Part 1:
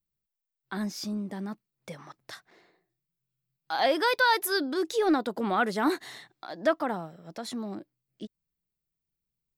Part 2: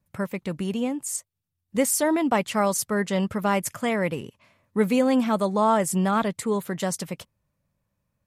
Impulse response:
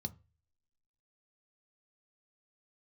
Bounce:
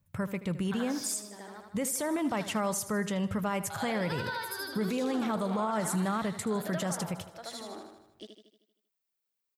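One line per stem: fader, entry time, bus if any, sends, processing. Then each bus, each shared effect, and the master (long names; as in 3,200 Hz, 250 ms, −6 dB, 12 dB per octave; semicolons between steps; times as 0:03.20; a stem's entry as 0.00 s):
+2.0 dB, 0.00 s, no send, echo send −6.5 dB, high-pass filter 500 Hz 12 dB per octave; downward compressor 5 to 1, threshold −31 dBFS, peak gain reduction 11 dB; automatic ducking −11 dB, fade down 1.35 s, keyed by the second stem
−2.0 dB, 0.00 s, send −15.5 dB, echo send −17.5 dB, downward compressor 1.5 to 1, threshold −26 dBFS, peak gain reduction 4 dB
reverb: on, RT60 0.30 s, pre-delay 3 ms
echo: repeating echo 78 ms, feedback 55%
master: parametric band 87 Hz +6.5 dB 0.77 octaves; brickwall limiter −22.5 dBFS, peak gain reduction 7.5 dB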